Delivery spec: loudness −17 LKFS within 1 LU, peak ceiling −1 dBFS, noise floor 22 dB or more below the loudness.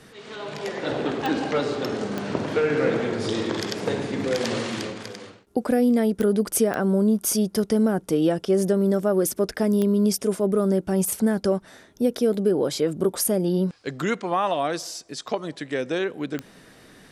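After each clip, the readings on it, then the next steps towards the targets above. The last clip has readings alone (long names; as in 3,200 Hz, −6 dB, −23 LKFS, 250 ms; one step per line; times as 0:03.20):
number of clicks 6; integrated loudness −24.0 LKFS; sample peak −10.0 dBFS; target loudness −17.0 LKFS
→ click removal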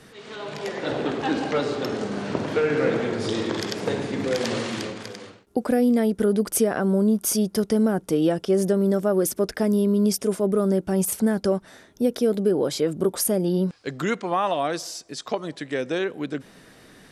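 number of clicks 0; integrated loudness −24.0 LKFS; sample peak −10.0 dBFS; target loudness −17.0 LKFS
→ level +7 dB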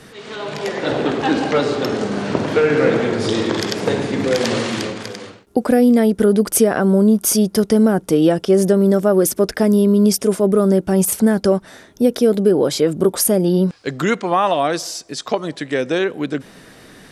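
integrated loudness −17.0 LKFS; sample peak −3.0 dBFS; background noise floor −45 dBFS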